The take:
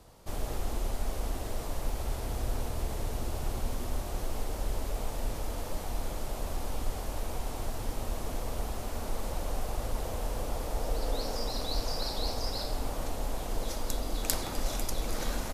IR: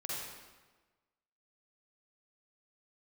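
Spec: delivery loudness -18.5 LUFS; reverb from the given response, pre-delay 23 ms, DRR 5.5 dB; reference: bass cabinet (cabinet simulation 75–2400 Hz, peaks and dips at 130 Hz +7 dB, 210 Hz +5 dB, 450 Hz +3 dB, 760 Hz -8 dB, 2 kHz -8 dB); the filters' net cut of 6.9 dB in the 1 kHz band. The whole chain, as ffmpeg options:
-filter_complex "[0:a]equalizer=f=1000:t=o:g=-4,asplit=2[s0][s1];[1:a]atrim=start_sample=2205,adelay=23[s2];[s1][s2]afir=irnorm=-1:irlink=0,volume=0.422[s3];[s0][s3]amix=inputs=2:normalize=0,highpass=f=75:w=0.5412,highpass=f=75:w=1.3066,equalizer=f=130:t=q:w=4:g=7,equalizer=f=210:t=q:w=4:g=5,equalizer=f=450:t=q:w=4:g=3,equalizer=f=760:t=q:w=4:g=-8,equalizer=f=2000:t=q:w=4:g=-8,lowpass=f=2400:w=0.5412,lowpass=f=2400:w=1.3066,volume=11.2"

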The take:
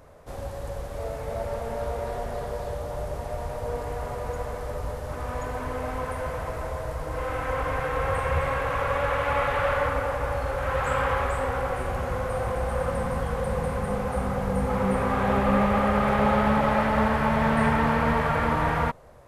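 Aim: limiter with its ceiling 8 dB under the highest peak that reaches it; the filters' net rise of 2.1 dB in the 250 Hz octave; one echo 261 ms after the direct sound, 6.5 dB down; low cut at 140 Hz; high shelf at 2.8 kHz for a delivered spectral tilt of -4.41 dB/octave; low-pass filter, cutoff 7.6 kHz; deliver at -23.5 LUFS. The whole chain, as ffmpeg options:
-af "highpass=140,lowpass=7600,equalizer=f=250:t=o:g=3.5,highshelf=f=2800:g=6.5,alimiter=limit=0.133:level=0:latency=1,aecho=1:1:261:0.473,volume=1.58"

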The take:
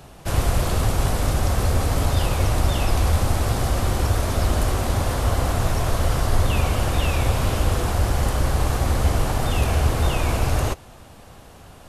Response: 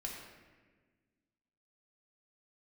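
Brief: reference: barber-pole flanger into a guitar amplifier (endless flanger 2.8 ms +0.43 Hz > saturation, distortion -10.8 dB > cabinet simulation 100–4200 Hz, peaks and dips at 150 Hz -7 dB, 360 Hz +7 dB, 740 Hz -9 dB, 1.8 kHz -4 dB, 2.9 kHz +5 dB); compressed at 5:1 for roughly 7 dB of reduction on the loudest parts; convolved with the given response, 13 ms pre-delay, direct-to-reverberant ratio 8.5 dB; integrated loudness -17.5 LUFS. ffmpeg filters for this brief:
-filter_complex "[0:a]acompressor=threshold=0.0794:ratio=5,asplit=2[s0][s1];[1:a]atrim=start_sample=2205,adelay=13[s2];[s1][s2]afir=irnorm=-1:irlink=0,volume=0.398[s3];[s0][s3]amix=inputs=2:normalize=0,asplit=2[s4][s5];[s5]adelay=2.8,afreqshift=0.43[s6];[s4][s6]amix=inputs=2:normalize=1,asoftclip=threshold=0.0447,highpass=100,equalizer=f=150:t=q:w=4:g=-7,equalizer=f=360:t=q:w=4:g=7,equalizer=f=740:t=q:w=4:g=-9,equalizer=f=1800:t=q:w=4:g=-4,equalizer=f=2900:t=q:w=4:g=5,lowpass=f=4200:w=0.5412,lowpass=f=4200:w=1.3066,volume=9.44"

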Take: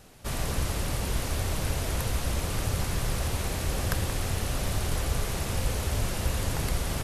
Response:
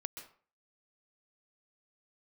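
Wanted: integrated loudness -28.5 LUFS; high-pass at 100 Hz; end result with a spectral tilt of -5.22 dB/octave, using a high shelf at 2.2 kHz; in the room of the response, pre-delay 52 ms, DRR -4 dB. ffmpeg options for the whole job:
-filter_complex "[0:a]highpass=100,highshelf=f=2200:g=-8.5,asplit=2[s0][s1];[1:a]atrim=start_sample=2205,adelay=52[s2];[s1][s2]afir=irnorm=-1:irlink=0,volume=2[s3];[s0][s3]amix=inputs=2:normalize=0,volume=1.06"

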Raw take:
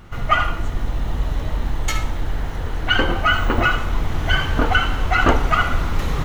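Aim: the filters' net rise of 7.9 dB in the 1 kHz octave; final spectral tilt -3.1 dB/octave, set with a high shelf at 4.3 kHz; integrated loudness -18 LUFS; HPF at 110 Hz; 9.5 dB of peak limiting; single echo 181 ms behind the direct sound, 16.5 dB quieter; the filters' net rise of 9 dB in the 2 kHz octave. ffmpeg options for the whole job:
-af "highpass=110,equalizer=f=1000:t=o:g=6.5,equalizer=f=2000:t=o:g=8.5,highshelf=f=4300:g=8.5,alimiter=limit=0.562:level=0:latency=1,aecho=1:1:181:0.15,volume=0.891"

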